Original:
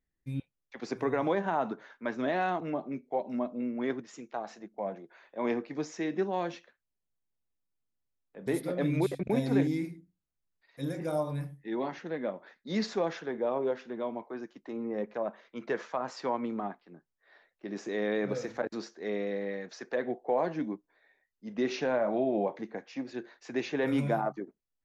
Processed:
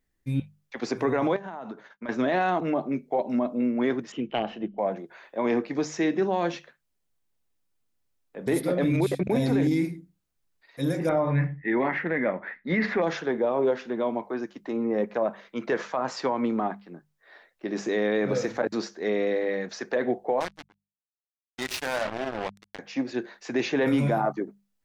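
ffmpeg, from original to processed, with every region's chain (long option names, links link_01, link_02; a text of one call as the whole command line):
ffmpeg -i in.wav -filter_complex "[0:a]asettb=1/sr,asplit=3[link_01][link_02][link_03];[link_01]atrim=end=1.364[link_04];[link_02]atrim=start=1.36:end=2.09,asetpts=PTS-STARTPTS,afade=type=in:duration=0.004:curve=qsin,afade=type=out:start_time=0.726:duration=0.004:curve=qsin,agate=range=-33dB:threshold=-47dB:ratio=3:release=100:detection=peak,acompressor=threshold=-41dB:ratio=16:attack=3.2:release=140:knee=1:detection=peak[link_05];[link_03]atrim=start=2.086[link_06];[link_04][link_05]acrossfade=duration=0.004:curve1=hsin:curve2=qsin[link_07];[link_07][link_06]acrossfade=duration=0.004:curve1=qsin:curve2=hsin,asettb=1/sr,asplit=3[link_08][link_09][link_10];[link_08]atrim=end=4.124[link_11];[link_09]atrim=start=4.12:end=4.78,asetpts=PTS-STARTPTS,afade=type=in:duration=0.004:curve=qsin,afade=type=out:start_time=0.656:duration=0.004:curve=qsin,tiltshelf=frequency=730:gain=9.5,asoftclip=type=hard:threshold=-27.5dB,lowpass=frequency=3000:width_type=q:width=16[link_12];[link_10]atrim=start=4.776[link_13];[link_11][link_12]acrossfade=duration=0.004:curve1=hsin:curve2=qsin[link_14];[link_14][link_13]acrossfade=duration=0.004:curve1=qsin:curve2=hsin,asettb=1/sr,asplit=3[link_15][link_16][link_17];[link_15]atrim=end=11.094[link_18];[link_16]atrim=start=11.09:end=13.02,asetpts=PTS-STARTPTS,afade=type=in:duration=0.004:curve=qsin,afade=type=out:start_time=1.926:duration=0.004:curve=qsin,lowpass=frequency=2000:width_type=q:width=4.6,lowshelf=frequency=180:gain=5.5[link_19];[link_17]atrim=start=13.016[link_20];[link_18][link_19]acrossfade=duration=0.004:curve1=hsin:curve2=qsin[link_21];[link_21][link_20]acrossfade=duration=0.004:curve1=qsin:curve2=hsin,asettb=1/sr,asplit=3[link_22][link_23][link_24];[link_22]atrim=end=20.404[link_25];[link_23]atrim=start=20.4:end=22.79,asetpts=PTS-STARTPTS,afade=type=in:duration=0.004:curve=qsin,afade=type=out:start_time=2.386:duration=0.004:curve=qsin,lowpass=10000,equalizer=frequency=340:width=0.54:gain=-15,acrusher=bits=5:mix=0:aa=0.5[link_26];[link_24]atrim=start=22.786[link_27];[link_25][link_26]acrossfade=duration=0.004:curve1=hsin:curve2=qsin[link_28];[link_28][link_27]acrossfade=duration=0.004:curve1=qsin:curve2=hsin,alimiter=level_in=0.5dB:limit=-24dB:level=0:latency=1:release=16,volume=-0.5dB,bandreject=frequency=50:width_type=h:width=6,bandreject=frequency=100:width_type=h:width=6,bandreject=frequency=150:width_type=h:width=6,bandreject=frequency=200:width_type=h:width=6,volume=8.5dB" out.wav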